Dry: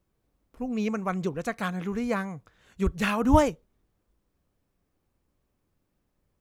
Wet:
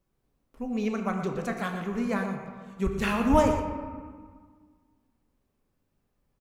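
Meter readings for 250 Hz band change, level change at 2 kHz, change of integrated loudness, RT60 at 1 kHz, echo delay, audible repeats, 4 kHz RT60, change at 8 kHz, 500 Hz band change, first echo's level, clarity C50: 0.0 dB, −1.0 dB, −1.0 dB, 1.7 s, 119 ms, 1, 0.90 s, −1.5 dB, 0.0 dB, −10.5 dB, 4.5 dB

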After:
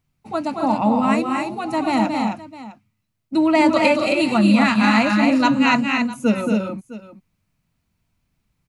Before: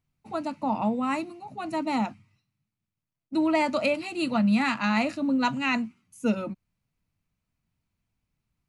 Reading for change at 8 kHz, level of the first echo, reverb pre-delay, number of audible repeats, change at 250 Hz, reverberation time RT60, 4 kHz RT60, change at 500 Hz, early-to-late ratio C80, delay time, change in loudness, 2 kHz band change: +9.0 dB, −5.5 dB, no reverb audible, 3, +9.5 dB, no reverb audible, no reverb audible, +9.0 dB, no reverb audible, 225 ms, +8.5 dB, +9.0 dB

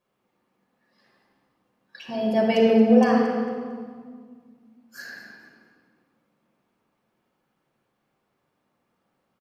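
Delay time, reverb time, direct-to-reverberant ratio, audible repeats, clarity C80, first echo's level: 228 ms, 1.9 s, −3.0 dB, 1, 2.5 dB, −13.5 dB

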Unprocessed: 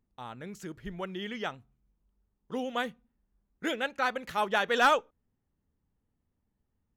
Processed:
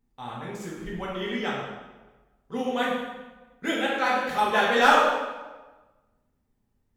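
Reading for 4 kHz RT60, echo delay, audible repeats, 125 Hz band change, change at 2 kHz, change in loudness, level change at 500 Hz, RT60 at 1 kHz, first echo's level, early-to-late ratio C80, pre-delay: 0.95 s, no echo audible, no echo audible, +6.0 dB, +6.0 dB, +5.5 dB, +6.0 dB, 1.2 s, no echo audible, 3.0 dB, 3 ms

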